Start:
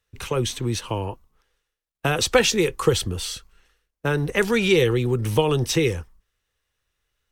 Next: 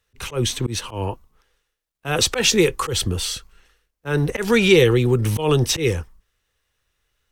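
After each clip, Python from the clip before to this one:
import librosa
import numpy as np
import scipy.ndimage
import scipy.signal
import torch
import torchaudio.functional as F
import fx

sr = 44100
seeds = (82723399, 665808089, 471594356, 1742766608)

y = fx.auto_swell(x, sr, attack_ms=125.0)
y = y * 10.0 ** (4.5 / 20.0)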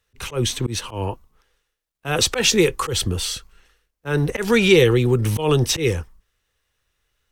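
y = x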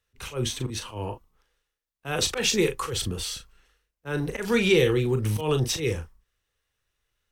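y = fx.doubler(x, sr, ms=38.0, db=-8)
y = y * 10.0 ** (-7.0 / 20.0)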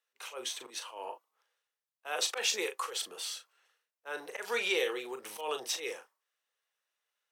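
y = fx.ladder_highpass(x, sr, hz=480.0, resonance_pct=25)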